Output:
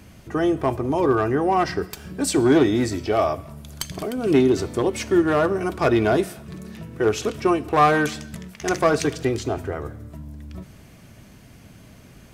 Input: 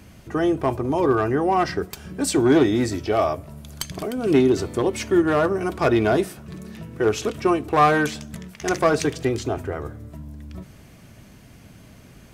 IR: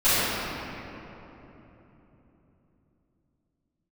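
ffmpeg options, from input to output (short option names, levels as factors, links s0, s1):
-filter_complex "[0:a]asplit=2[s0][s1];[s1]tiltshelf=f=1400:g=-6.5[s2];[1:a]atrim=start_sample=2205,afade=t=out:st=0.33:d=0.01,atrim=end_sample=14994[s3];[s2][s3]afir=irnorm=-1:irlink=0,volume=0.0119[s4];[s0][s4]amix=inputs=2:normalize=0"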